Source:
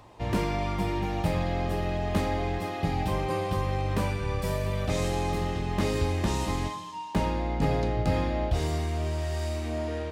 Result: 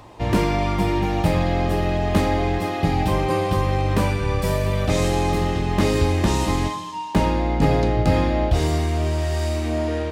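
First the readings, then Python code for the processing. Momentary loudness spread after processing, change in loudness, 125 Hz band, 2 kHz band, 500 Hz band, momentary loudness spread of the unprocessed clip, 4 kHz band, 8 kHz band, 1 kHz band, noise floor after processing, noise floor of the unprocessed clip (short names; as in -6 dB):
4 LU, +8.0 dB, +7.5 dB, +7.5 dB, +8.0 dB, 4 LU, +7.5 dB, +7.5 dB, +7.5 dB, -29 dBFS, -37 dBFS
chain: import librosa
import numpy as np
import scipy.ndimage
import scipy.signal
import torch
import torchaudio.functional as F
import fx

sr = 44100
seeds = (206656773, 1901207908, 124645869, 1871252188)

y = fx.peak_eq(x, sr, hz=310.0, db=3.0, octaves=0.32)
y = y * librosa.db_to_amplitude(7.5)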